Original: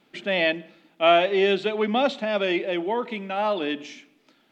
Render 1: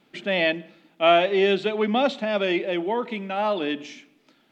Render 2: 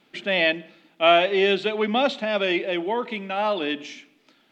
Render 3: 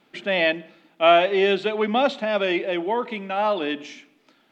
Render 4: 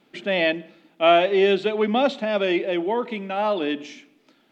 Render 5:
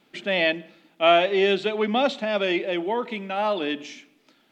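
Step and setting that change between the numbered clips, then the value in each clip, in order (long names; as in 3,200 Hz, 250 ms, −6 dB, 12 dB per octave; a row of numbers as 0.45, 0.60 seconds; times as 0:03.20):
parametric band, centre frequency: 110, 3,100, 1,100, 330, 14,000 Hertz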